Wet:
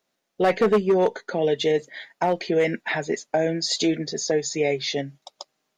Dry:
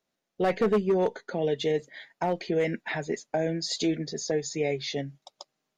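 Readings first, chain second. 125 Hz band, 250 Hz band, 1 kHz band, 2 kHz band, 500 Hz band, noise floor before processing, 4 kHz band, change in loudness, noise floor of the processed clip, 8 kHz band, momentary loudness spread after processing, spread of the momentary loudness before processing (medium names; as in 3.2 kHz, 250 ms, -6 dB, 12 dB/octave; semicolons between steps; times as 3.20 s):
+2.0 dB, +4.0 dB, +6.0 dB, +6.5 dB, +5.5 dB, -83 dBFS, +6.5 dB, +5.0 dB, -77 dBFS, +6.5 dB, 8 LU, 8 LU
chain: bass shelf 190 Hz -8 dB; trim +6.5 dB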